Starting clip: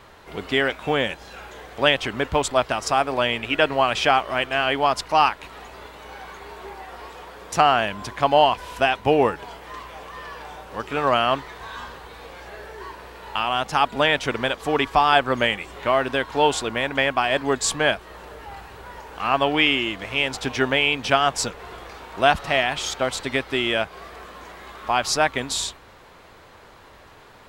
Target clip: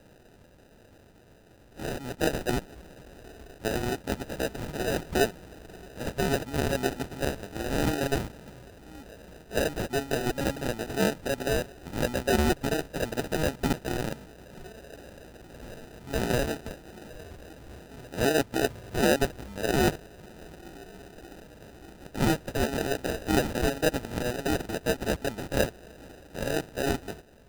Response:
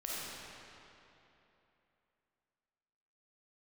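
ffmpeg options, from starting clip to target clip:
-af "areverse,acrusher=samples=40:mix=1:aa=0.000001,volume=-7dB"

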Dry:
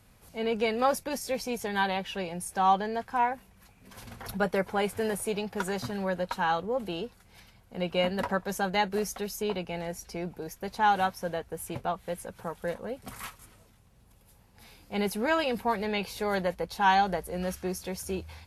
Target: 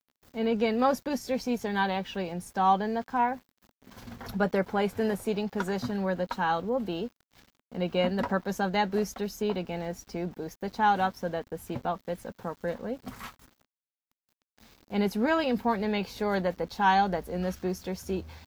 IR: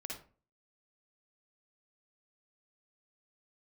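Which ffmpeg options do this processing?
-af "aeval=exprs='val(0)*gte(abs(val(0)),0.00335)':channel_layout=same,equalizer=frequency=250:width_type=o:width=0.67:gain=7,equalizer=frequency=2500:width_type=o:width=0.67:gain=-3,equalizer=frequency=10000:width_type=o:width=0.67:gain=-12"

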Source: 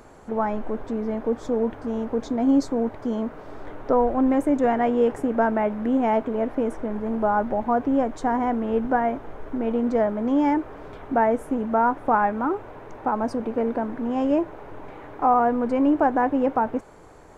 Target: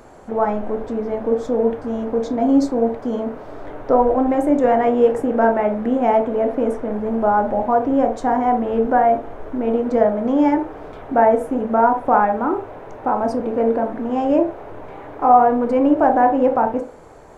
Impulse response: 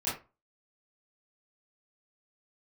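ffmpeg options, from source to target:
-filter_complex "[0:a]asplit=2[link_01][link_02];[link_02]equalizer=frequency=570:width_type=o:width=1.4:gain=13.5[link_03];[1:a]atrim=start_sample=2205[link_04];[link_03][link_04]afir=irnorm=-1:irlink=0,volume=-16dB[link_05];[link_01][link_05]amix=inputs=2:normalize=0,volume=1.5dB"

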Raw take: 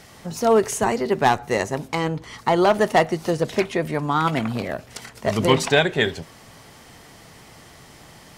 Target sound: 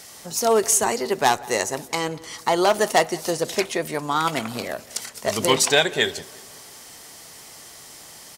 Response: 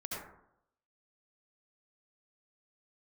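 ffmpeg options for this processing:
-filter_complex "[0:a]bass=frequency=250:gain=-9,treble=frequency=4000:gain=12,asplit=2[link_01][link_02];[link_02]adelay=182,lowpass=frequency=3200:poles=1,volume=-21.5dB,asplit=2[link_03][link_04];[link_04]adelay=182,lowpass=frequency=3200:poles=1,volume=0.5,asplit=2[link_05][link_06];[link_06]adelay=182,lowpass=frequency=3200:poles=1,volume=0.5,asplit=2[link_07][link_08];[link_08]adelay=182,lowpass=frequency=3200:poles=1,volume=0.5[link_09];[link_03][link_05][link_07][link_09]amix=inputs=4:normalize=0[link_10];[link_01][link_10]amix=inputs=2:normalize=0,volume=-1dB"

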